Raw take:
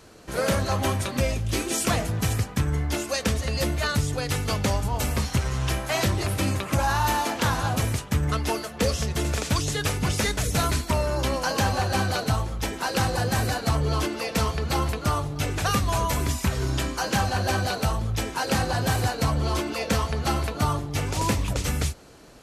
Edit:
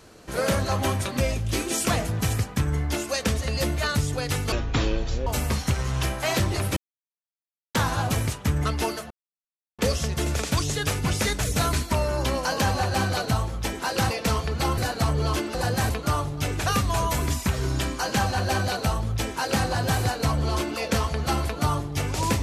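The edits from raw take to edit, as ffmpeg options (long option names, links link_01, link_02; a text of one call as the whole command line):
ffmpeg -i in.wav -filter_complex "[0:a]asplit=10[link_01][link_02][link_03][link_04][link_05][link_06][link_07][link_08][link_09][link_10];[link_01]atrim=end=4.524[link_11];[link_02]atrim=start=4.52:end=4.93,asetpts=PTS-STARTPTS,asetrate=24255,aresample=44100[link_12];[link_03]atrim=start=4.926:end=6.43,asetpts=PTS-STARTPTS,afade=type=out:start_time=1.5:duration=0.004:curve=hsin[link_13];[link_04]atrim=start=6.43:end=7.41,asetpts=PTS-STARTPTS,volume=0[link_14];[link_05]atrim=start=7.41:end=8.77,asetpts=PTS-STARTPTS,afade=type=in:duration=0.004:curve=hsin,afade=type=out:start_time=1.356:duration=0.004:curve=hsin,apad=pad_dur=0.68[link_15];[link_06]atrim=start=8.77:end=13.092,asetpts=PTS-STARTPTS,afade=type=in:duration=0.004:curve=hsin[link_16];[link_07]atrim=start=14.208:end=14.882[link_17];[link_08]atrim=start=13.438:end=14.212[link_18];[link_09]atrim=start=13.088:end=13.442[link_19];[link_10]atrim=start=14.878[link_20];[link_11][link_12]acrossfade=duration=0.004:curve1=hsin:curve2=hsin[link_21];[link_13][link_14][link_15][link_16]concat=n=4:v=0:a=1[link_22];[link_21][link_22]acrossfade=duration=0.004:curve1=hsin:curve2=hsin[link_23];[link_23][link_17]acrossfade=duration=0.004:curve1=hsin:curve2=hsin[link_24];[link_24][link_18]acrossfade=duration=0.004:curve1=hsin:curve2=hsin[link_25];[link_25][link_19]acrossfade=duration=0.004:curve1=hsin:curve2=hsin[link_26];[link_26][link_20]acrossfade=duration=0.004:curve1=hsin:curve2=hsin" out.wav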